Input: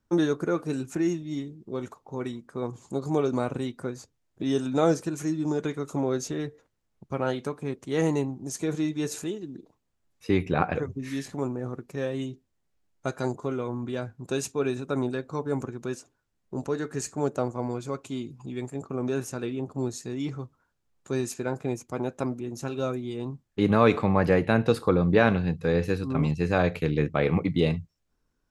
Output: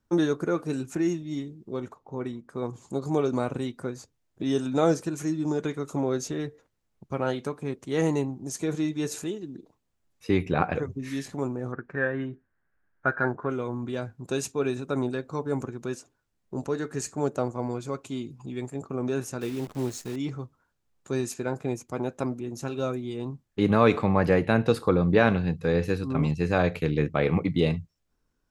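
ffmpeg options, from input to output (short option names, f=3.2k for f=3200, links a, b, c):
-filter_complex "[0:a]asettb=1/sr,asplit=3[a][b][c];[a]atrim=end=1.804[d];[b]atrim=start=1.8:end=2.49,asetpts=PTS-STARTPTS,afade=t=in:d=0.004:c=qsin,afade=t=out:st=0.686:d=0.004:c=qsin,highshelf=f=2.8k:g=-9[e];[c]atrim=start=2.486[f];[d][e]acrossfade=d=0.004:c1=hsin:c2=qsin[g];[g][f]acrossfade=d=0.004:c1=qsin:c2=hsin,asettb=1/sr,asplit=3[h][i][j];[h]atrim=end=11.724[k];[i]atrim=start=11.72:end=13.5,asetpts=PTS-STARTPTS,afade=t=in:d=0.004:c=qsin,afade=t=out:st=1.776:d=0.004:c=qsin,lowpass=f=1.6k:t=q:w=8.7[l];[j]atrim=start=13.496[m];[k][l]acrossfade=d=0.004:c1=hsin:c2=qsin[n];[n][m]acrossfade=d=0.004:c1=qsin:c2=hsin,asettb=1/sr,asplit=3[o][p][q];[o]atrim=end=19.414[r];[p]atrim=start=19.41:end=20.16,asetpts=PTS-STARTPTS,afade=t=in:d=0.004:c=qsin,afade=t=out:st=0.746:d=0.004:c=qsin,acrusher=bits=8:dc=4:mix=0:aa=0.000001[s];[q]atrim=start=20.156[t];[r][s]acrossfade=d=0.004:c1=hsin:c2=qsin[u];[u][t]acrossfade=d=0.004:c1=qsin:c2=hsin"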